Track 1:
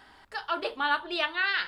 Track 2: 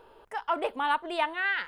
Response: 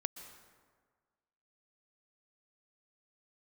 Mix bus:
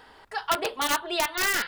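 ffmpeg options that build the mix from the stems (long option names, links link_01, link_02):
-filter_complex "[0:a]aeval=exprs='(mod(10.6*val(0)+1,2)-1)/10.6':channel_layout=same,volume=1.5dB[link_01];[1:a]lowshelf=frequency=380:gain=-11.5,volume=-1,volume=1dB[link_02];[link_01][link_02]amix=inputs=2:normalize=0"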